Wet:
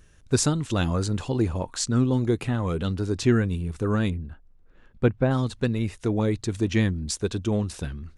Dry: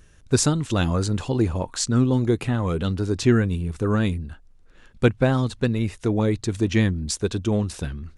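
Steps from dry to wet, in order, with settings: 4.10–5.31 s: low-pass 1.4 kHz 6 dB/octave; trim -2.5 dB

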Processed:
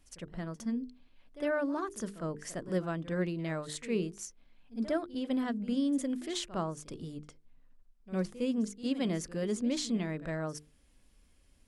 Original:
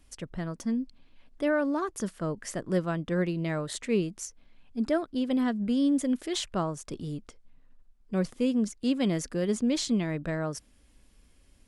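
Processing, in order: hum notches 50/100/150/200/250/300/350/400/450 Hz; reverse echo 58 ms -15.5 dB; trim -4.5 dB

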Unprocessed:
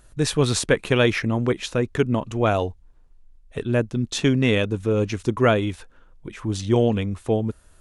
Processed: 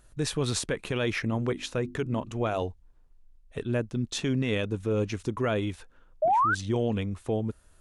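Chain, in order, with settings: 1.30–2.62 s: hum notches 50/100/150/200/250/300/350 Hz; 6.22–6.55 s: painted sound rise 590–1600 Hz -14 dBFS; peak limiter -13 dBFS, peak gain reduction 7 dB; trim -5.5 dB

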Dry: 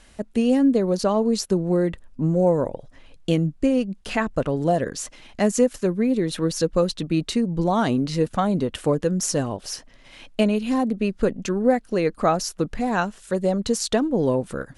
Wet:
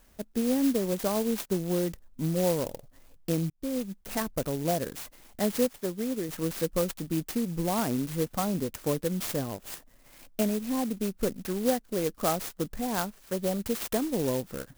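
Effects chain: 3.50–4.00 s: fade in equal-power; 5.71–6.29 s: bass shelf 210 Hz -8 dB; sampling jitter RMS 0.093 ms; trim -7.5 dB

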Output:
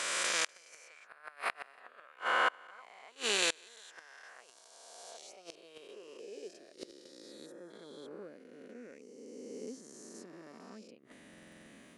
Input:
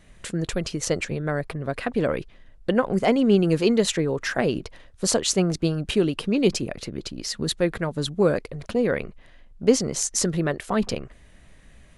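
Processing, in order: reverse spectral sustain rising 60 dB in 2.99 s; high-pass sweep 1.1 kHz -> 260 Hz, 4.33–7.59 s; inverted gate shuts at -12 dBFS, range -30 dB; time-frequency box 7.46–7.70 s, 1.9–4.9 kHz -13 dB; buffer glitch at 11.29 s, samples 2048, times 7; trim -4.5 dB

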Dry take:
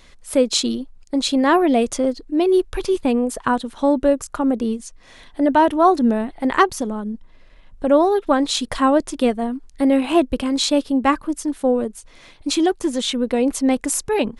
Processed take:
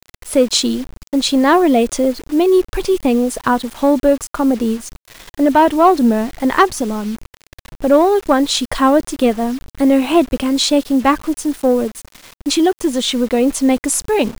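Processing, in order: in parallel at -5 dB: saturation -13.5 dBFS, distortion -13 dB; on the sum: bit crusher 6-bit; trim +1 dB

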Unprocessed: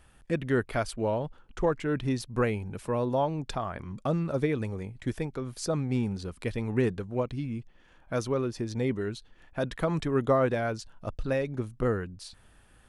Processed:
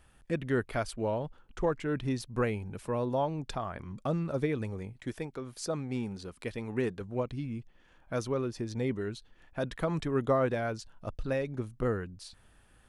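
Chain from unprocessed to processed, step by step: 4.93–7.01 s: bass shelf 150 Hz -9 dB; trim -3 dB

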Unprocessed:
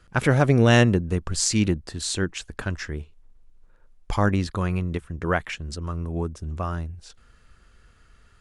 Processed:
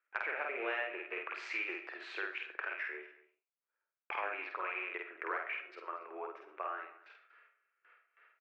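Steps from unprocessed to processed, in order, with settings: rattle on loud lows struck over -25 dBFS, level -25 dBFS; Chebyshev band-pass 350–2400 Hz, order 4; gate with hold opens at -53 dBFS; differentiator; compression 5:1, threshold -50 dBFS, peak gain reduction 17 dB; doubling 49 ms -2.5 dB; delay 234 ms -19.5 dB; reverberation, pre-delay 30 ms, DRR 9.5 dB; trim +13 dB

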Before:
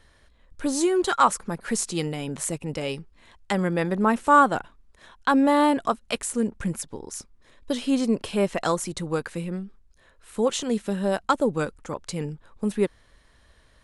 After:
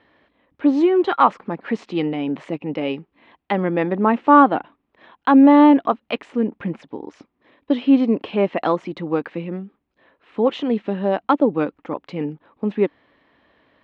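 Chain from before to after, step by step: cabinet simulation 190–3000 Hz, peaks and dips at 290 Hz +8 dB, 780 Hz +3 dB, 1.5 kHz -5 dB; trim +4 dB

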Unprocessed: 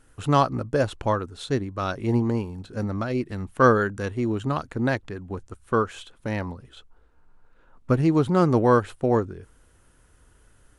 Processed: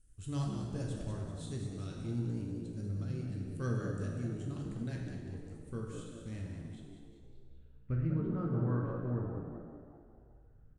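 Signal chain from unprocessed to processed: amplifier tone stack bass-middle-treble 10-0-1; on a send: frequency-shifting echo 194 ms, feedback 49%, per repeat +59 Hz, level -8.5 dB; on the sum: low-pass sweep 8.8 kHz -> 1.3 kHz, 7.01–8.20 s; treble shelf 5.3 kHz +5.5 dB; plate-style reverb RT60 1.6 s, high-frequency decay 0.8×, DRR -1 dB

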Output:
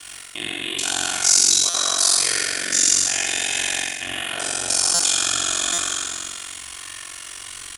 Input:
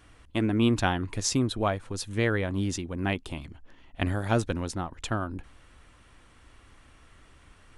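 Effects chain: spectral sustain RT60 2.39 s; in parallel at 0 dB: peak limiter -19 dBFS, peak gain reduction 11.5 dB; on the sum: comb 2.8 ms, depth 46%; reverse; compression 12:1, threshold -29 dBFS, peak gain reduction 16.5 dB; reverse; treble shelf 2.2 kHz +11 dB; flutter echo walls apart 7.7 m, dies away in 1.2 s; ring modulator 23 Hz; tilt EQ +3.5 dB/octave; buffer glitch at 1.69/4.94/5.73 s, samples 256, times 8; trim +1.5 dB

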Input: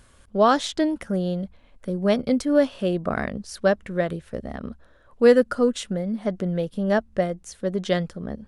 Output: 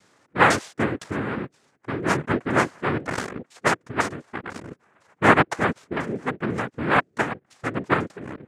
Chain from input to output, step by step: self-modulated delay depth 0.13 ms; LFO low-pass saw down 2 Hz 630–2700 Hz; noise-vocoded speech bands 3; trim -3 dB

